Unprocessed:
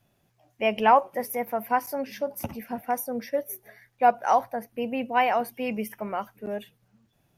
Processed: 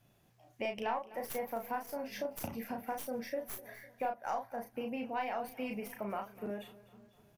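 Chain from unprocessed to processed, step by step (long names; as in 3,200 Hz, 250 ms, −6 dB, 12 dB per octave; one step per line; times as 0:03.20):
stylus tracing distortion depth 0.048 ms
downward compressor 4 to 1, threshold −36 dBFS, peak gain reduction 19 dB
double-tracking delay 35 ms −4.5 dB
on a send: repeating echo 252 ms, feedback 56%, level −19 dB
on the sum: level −1.5 dB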